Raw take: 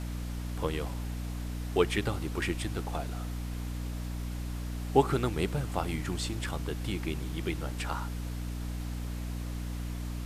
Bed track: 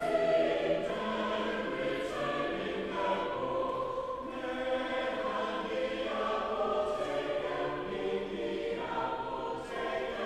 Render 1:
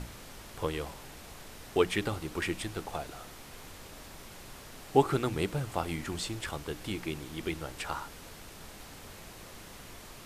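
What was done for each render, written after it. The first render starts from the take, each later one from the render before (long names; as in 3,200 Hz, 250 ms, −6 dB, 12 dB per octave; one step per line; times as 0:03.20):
mains-hum notches 60/120/180/240/300 Hz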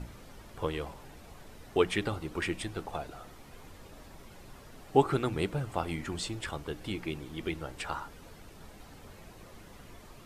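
broadband denoise 9 dB, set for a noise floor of −49 dBFS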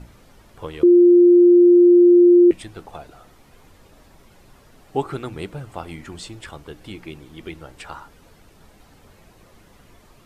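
0:00.83–0:02.51: beep over 351 Hz −7.5 dBFS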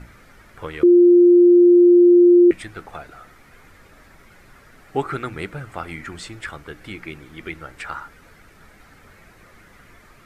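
flat-topped bell 1,700 Hz +9 dB 1.1 octaves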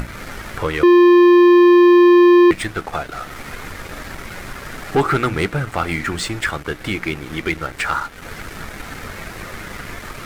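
upward compression, threshold −32 dBFS
leveller curve on the samples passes 3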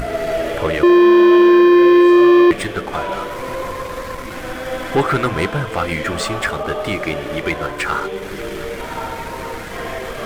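mix in bed track +7 dB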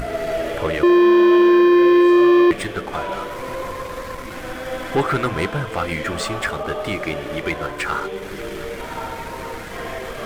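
level −3 dB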